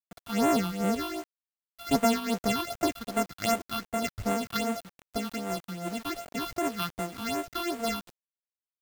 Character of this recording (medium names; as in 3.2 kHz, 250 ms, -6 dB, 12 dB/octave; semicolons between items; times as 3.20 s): a buzz of ramps at a fixed pitch in blocks of 64 samples; phasing stages 6, 2.6 Hz, lowest notch 510–4800 Hz; a quantiser's noise floor 8-bit, dither none; random flutter of the level